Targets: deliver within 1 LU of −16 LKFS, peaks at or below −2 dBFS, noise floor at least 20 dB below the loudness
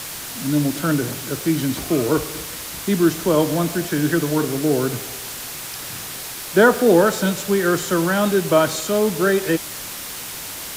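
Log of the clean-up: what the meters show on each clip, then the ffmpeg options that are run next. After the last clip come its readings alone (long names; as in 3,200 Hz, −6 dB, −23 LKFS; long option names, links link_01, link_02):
background noise floor −32 dBFS; target noise floor −41 dBFS; integrated loudness −20.5 LKFS; sample peak −2.5 dBFS; target loudness −16.0 LKFS
→ -af "afftdn=noise_reduction=9:noise_floor=-32"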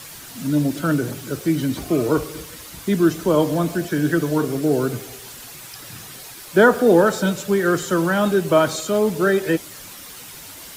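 background noise floor −39 dBFS; target noise floor −40 dBFS
→ -af "afftdn=noise_reduction=6:noise_floor=-39"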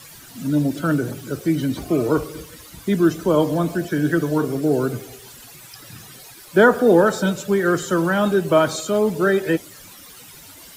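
background noise floor −43 dBFS; integrated loudness −19.5 LKFS; sample peak −3.0 dBFS; target loudness −16.0 LKFS
→ -af "volume=3.5dB,alimiter=limit=-2dB:level=0:latency=1"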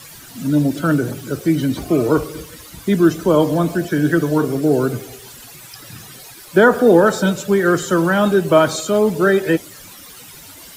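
integrated loudness −16.5 LKFS; sample peak −2.0 dBFS; background noise floor −40 dBFS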